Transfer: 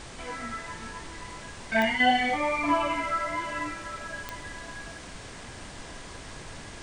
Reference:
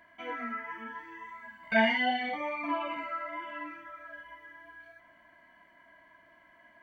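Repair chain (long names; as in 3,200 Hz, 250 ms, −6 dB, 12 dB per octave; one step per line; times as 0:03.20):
click removal
noise reduction from a noise print 17 dB
level 0 dB, from 0:02.00 −7.5 dB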